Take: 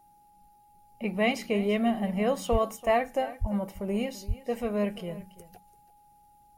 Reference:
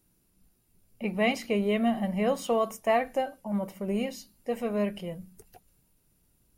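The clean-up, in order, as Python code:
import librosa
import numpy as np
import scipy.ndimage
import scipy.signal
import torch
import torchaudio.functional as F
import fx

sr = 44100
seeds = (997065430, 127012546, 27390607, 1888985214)

y = fx.notch(x, sr, hz=830.0, q=30.0)
y = fx.fix_deplosive(y, sr, at_s=(2.51, 3.4, 4.27))
y = fx.fix_echo_inverse(y, sr, delay_ms=337, level_db=-17.5)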